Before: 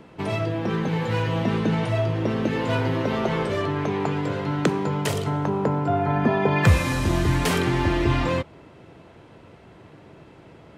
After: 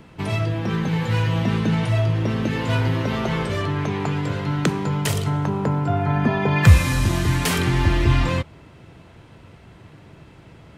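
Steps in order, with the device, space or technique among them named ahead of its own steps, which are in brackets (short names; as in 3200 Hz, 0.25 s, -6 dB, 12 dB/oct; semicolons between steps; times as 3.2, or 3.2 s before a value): smiley-face EQ (low shelf 170 Hz +5.5 dB; bell 450 Hz -6.5 dB 2.4 oct; high shelf 8600 Hz +4.5 dB); 7.07–7.59 HPF 120 Hz 6 dB/oct; gain +3 dB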